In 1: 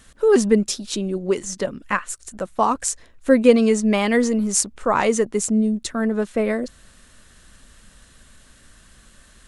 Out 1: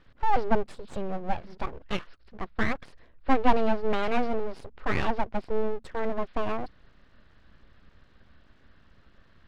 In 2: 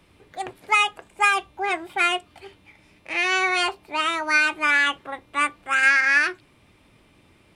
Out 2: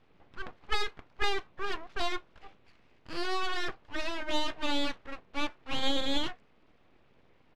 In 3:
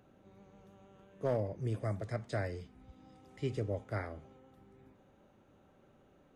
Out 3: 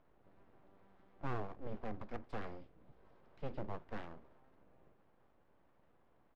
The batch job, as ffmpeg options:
-af "aresample=11025,aresample=44100,highshelf=f=2.3k:g=-7.5,aeval=exprs='abs(val(0))':c=same,aemphasis=mode=reproduction:type=50fm,volume=-4.5dB"

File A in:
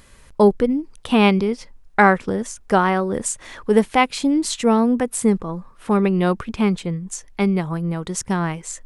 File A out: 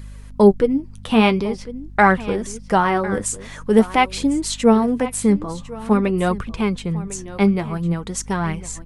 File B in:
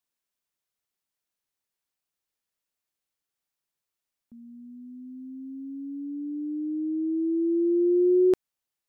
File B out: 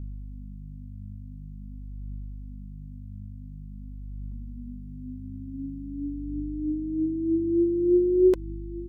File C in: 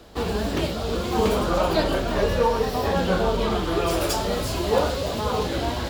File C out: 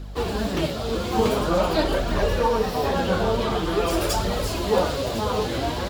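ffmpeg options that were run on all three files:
-filter_complex "[0:a]asplit=2[a][b];[b]aecho=0:1:1052:0.158[c];[a][c]amix=inputs=2:normalize=0,aeval=exprs='val(0)+0.0141*(sin(2*PI*50*n/s)+sin(2*PI*2*50*n/s)/2+sin(2*PI*3*50*n/s)/3+sin(2*PI*4*50*n/s)/4+sin(2*PI*5*50*n/s)/5)':c=same,flanger=delay=0.4:depth=9.8:regen=48:speed=0.47:shape=triangular,volume=4dB"

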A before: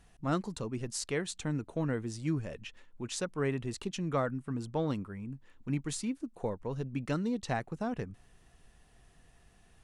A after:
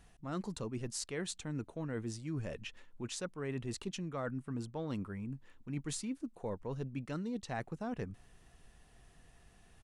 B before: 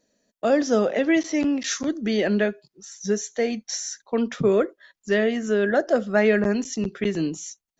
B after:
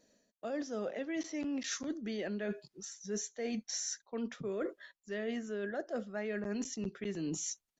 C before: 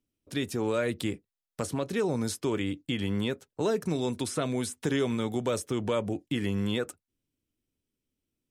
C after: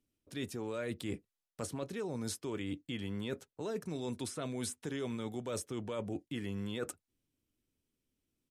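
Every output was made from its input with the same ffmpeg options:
-af "areverse,acompressor=threshold=-35dB:ratio=10,areverse,aresample=32000,aresample=44100"

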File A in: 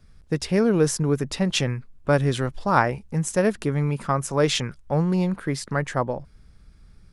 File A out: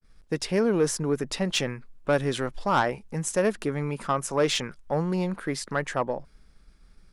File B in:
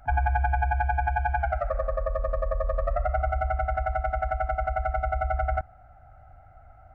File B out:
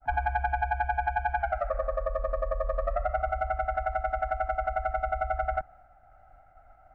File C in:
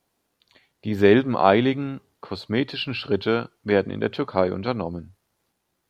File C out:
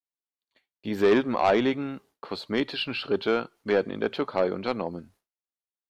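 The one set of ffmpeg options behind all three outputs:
-af "agate=range=-33dB:threshold=-47dB:ratio=3:detection=peak,equalizer=f=94:t=o:w=1.6:g=-13,asoftclip=type=tanh:threshold=-13.5dB,adynamicequalizer=threshold=0.0112:dfrequency=2500:dqfactor=0.7:tfrequency=2500:tqfactor=0.7:attack=5:release=100:ratio=0.375:range=1.5:mode=cutabove:tftype=highshelf"

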